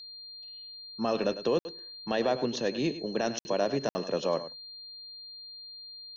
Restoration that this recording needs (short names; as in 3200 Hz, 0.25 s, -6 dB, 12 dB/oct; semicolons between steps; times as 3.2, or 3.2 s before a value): notch 4200 Hz, Q 30; interpolate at 1.59/3.39/3.89, 60 ms; inverse comb 0.102 s -13 dB